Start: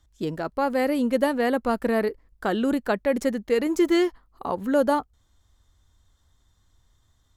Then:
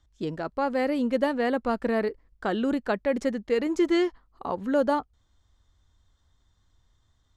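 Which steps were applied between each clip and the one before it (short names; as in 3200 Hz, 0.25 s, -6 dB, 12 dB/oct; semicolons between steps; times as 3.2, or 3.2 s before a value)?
LPF 6400 Hz 12 dB/oct; gain -2.5 dB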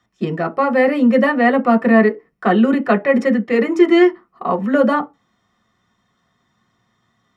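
reverb RT60 0.20 s, pre-delay 3 ms, DRR 2 dB; gain +2.5 dB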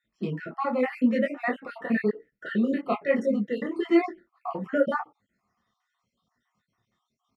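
random spectral dropouts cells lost 51%; detuned doubles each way 33 cents; gain -5.5 dB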